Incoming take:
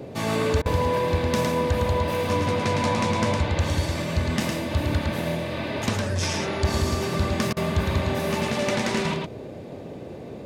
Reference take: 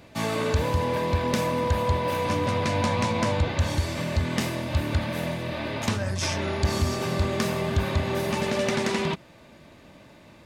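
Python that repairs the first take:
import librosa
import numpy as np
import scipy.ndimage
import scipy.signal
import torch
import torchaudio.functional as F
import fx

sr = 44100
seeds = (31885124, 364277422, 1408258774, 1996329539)

y = fx.fix_interpolate(x, sr, at_s=(0.62, 7.53), length_ms=36.0)
y = fx.noise_reduce(y, sr, print_start_s=9.51, print_end_s=10.01, reduce_db=13.0)
y = fx.fix_echo_inverse(y, sr, delay_ms=109, level_db=-4.0)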